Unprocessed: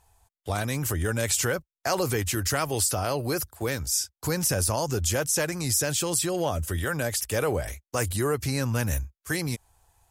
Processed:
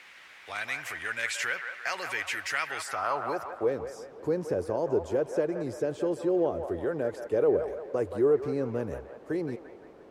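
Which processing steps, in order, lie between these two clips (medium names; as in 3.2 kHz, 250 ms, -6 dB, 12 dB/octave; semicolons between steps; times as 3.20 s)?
added noise pink -46 dBFS; band-pass sweep 2.1 kHz -> 410 Hz, 2.66–3.78 s; feedback echo behind a band-pass 173 ms, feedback 50%, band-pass 1.1 kHz, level -6 dB; trim +5.5 dB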